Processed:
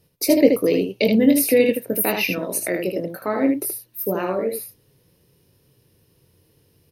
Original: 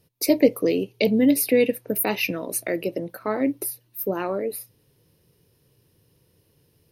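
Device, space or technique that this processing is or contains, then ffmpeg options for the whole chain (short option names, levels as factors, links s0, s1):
slapback doubling: -filter_complex "[0:a]asplit=3[s0][s1][s2];[s1]adelay=22,volume=0.398[s3];[s2]adelay=77,volume=0.562[s4];[s0][s3][s4]amix=inputs=3:normalize=0,volume=1.19"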